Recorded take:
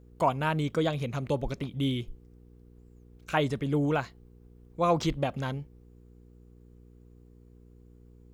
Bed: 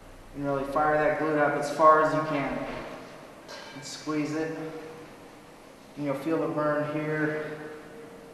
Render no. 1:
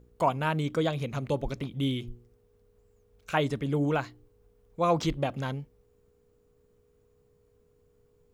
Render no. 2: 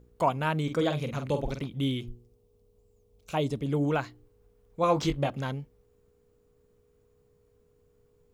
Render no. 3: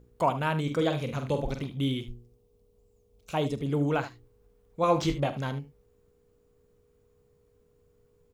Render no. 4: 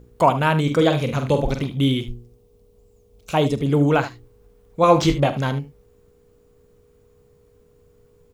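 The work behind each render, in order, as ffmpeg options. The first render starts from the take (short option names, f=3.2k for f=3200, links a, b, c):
-af "bandreject=f=60:t=h:w=4,bandreject=f=120:t=h:w=4,bandreject=f=180:t=h:w=4,bandreject=f=240:t=h:w=4,bandreject=f=300:t=h:w=4,bandreject=f=360:t=h:w=4"
-filter_complex "[0:a]asettb=1/sr,asplit=3[a][b][c];[a]atrim=end=0.634[d];[b]atrim=start=0.63:end=1.61,asetpts=PTS-STARTPTS,afade=t=in:d=0.004:c=qsin,afade=t=out:st=0.976:d=0.004:c=qsin,asplit=2[e][f];[f]adelay=47,volume=-7.5dB[g];[e][g]amix=inputs=2:normalize=0,atrim=end_sample=43218[h];[c]atrim=start=1.606[i];[d][h]acrossfade=d=0.004:c1=hsin:c2=qsin[j];[j][i]acrossfade=d=0.004:c1=qsin:c2=hsin,asettb=1/sr,asplit=3[k][l][m];[k]atrim=end=2.114[n];[l]atrim=start=2.11:end=3.66,asetpts=PTS-STARTPTS,afade=t=in:d=0.004:c=qsin,afade=t=out:st=1.546:d=0.004:c=qsin,equalizer=f=1.6k:t=o:w=0.96:g=-13[o];[m]atrim=start=3.656[p];[n][o]acrossfade=d=0.004:c1=hsin:c2=qsin[q];[q][p]acrossfade=d=0.004:c1=qsin:c2=hsin,asettb=1/sr,asplit=3[r][s][t];[r]atrim=end=4.814[u];[s]atrim=start=4.81:end=5.3,asetpts=PTS-STARTPTS,afade=t=in:d=0.004:c=qsin,afade=t=out:st=0.486:d=0.004:c=qsin,asplit=2[v][w];[w]adelay=21,volume=-7dB[x];[v][x]amix=inputs=2:normalize=0,atrim=end_sample=21609[y];[t]atrim=start=5.296[z];[u][y]acrossfade=d=0.004:c1=hsin:c2=qsin[aa];[aa][z]acrossfade=d=0.004:c1=qsin:c2=hsin"
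-af "aecho=1:1:43|75:0.15|0.211"
-af "volume=9.5dB"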